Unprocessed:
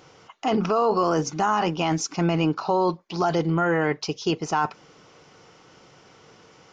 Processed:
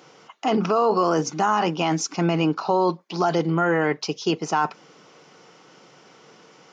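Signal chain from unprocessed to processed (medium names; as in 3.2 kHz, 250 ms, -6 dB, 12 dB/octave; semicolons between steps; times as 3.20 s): high-pass 150 Hz 24 dB/octave; trim +1.5 dB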